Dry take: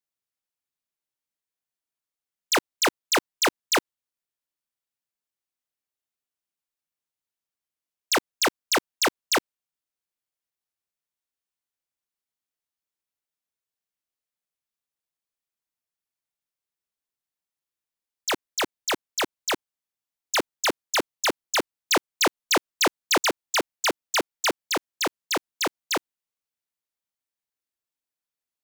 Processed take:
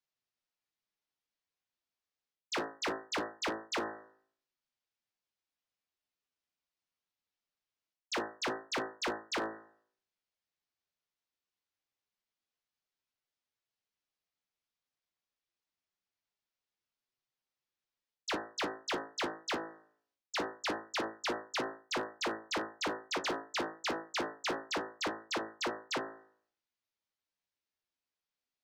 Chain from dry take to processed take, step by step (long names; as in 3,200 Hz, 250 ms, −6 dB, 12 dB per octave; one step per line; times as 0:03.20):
low-pass filter 5,900 Hz 24 dB per octave
hum removal 54.85 Hz, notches 35
reversed playback
downward compressor 16 to 1, threshold −33 dBFS, peak gain reduction 14.5 dB
reversed playback
flanger 0.23 Hz, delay 7.5 ms, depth 4.8 ms, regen +42%
hard clipping −34.5 dBFS, distortion −17 dB
level +4.5 dB